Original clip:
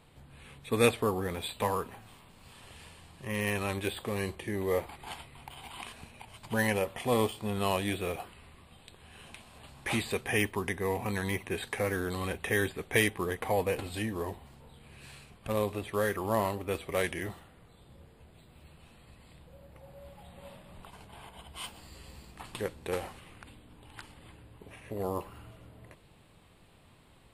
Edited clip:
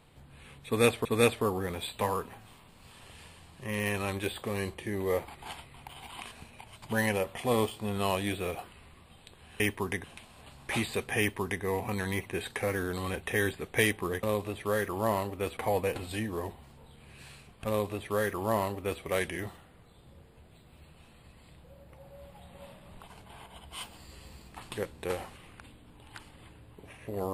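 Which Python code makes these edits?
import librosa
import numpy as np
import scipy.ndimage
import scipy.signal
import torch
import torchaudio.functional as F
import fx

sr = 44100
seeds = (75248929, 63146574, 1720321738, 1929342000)

y = fx.edit(x, sr, fx.repeat(start_s=0.66, length_s=0.39, count=2),
    fx.duplicate(start_s=10.36, length_s=0.44, to_s=9.21),
    fx.duplicate(start_s=15.51, length_s=1.34, to_s=13.4), tone=tone)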